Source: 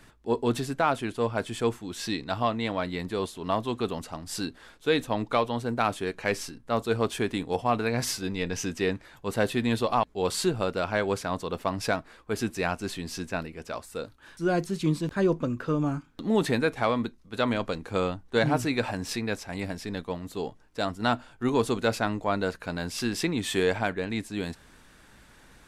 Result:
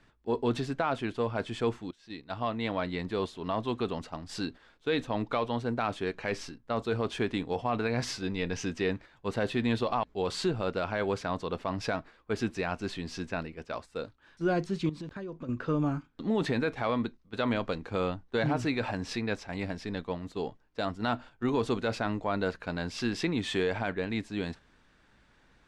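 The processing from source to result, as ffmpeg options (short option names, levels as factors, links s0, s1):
-filter_complex "[0:a]asettb=1/sr,asplit=3[s0][s1][s2];[s0]atrim=end=14.894[s3];[s1]atrim=start=14.89:end=15.49,asetpts=PTS-STARTPTS,afade=t=in:d=0.004:c=qsin,afade=t=out:st=0.596:d=0.004:c=qsin,acompressor=threshold=0.02:ratio=10:attack=3.2:release=140:knee=1:detection=peak[s4];[s2]atrim=start=15.486[s5];[s3][s4]acrossfade=d=0.004:c1=hsin:c2=qsin[s6];[s6][s5]acrossfade=d=0.004:c1=qsin:c2=hsin,asplit=2[s7][s8];[s7]atrim=end=1.91,asetpts=PTS-STARTPTS,afade=t=out:st=1.906:d=0.004:c=hsin:silence=0.0794328[s9];[s8]atrim=start=1.91,asetpts=PTS-STARTPTS,afade=t=in:d=0.84:silence=0.0794328[s10];[s9][s10]concat=n=2:v=0:a=1,agate=range=0.447:threshold=0.00891:ratio=16:detection=peak,lowpass=4900,alimiter=limit=0.133:level=0:latency=1:release=25,volume=0.841"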